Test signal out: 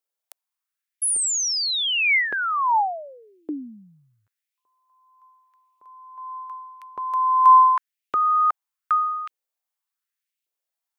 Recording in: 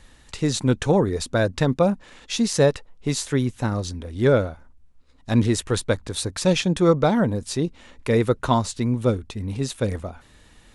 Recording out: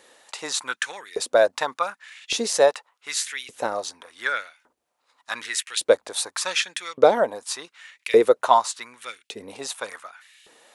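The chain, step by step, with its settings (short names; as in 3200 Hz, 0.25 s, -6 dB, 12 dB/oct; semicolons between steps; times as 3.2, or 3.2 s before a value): high shelf 9400 Hz +6 dB; LFO high-pass saw up 0.86 Hz 410–2800 Hz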